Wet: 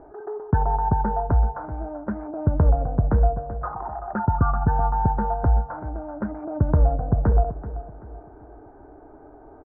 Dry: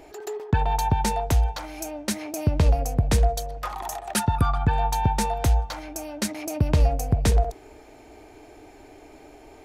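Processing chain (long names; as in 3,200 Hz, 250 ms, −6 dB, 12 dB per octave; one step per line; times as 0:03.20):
Chebyshev low-pass filter 1,500 Hz, order 5
repeating echo 383 ms, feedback 37%, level −14 dB
level +1.5 dB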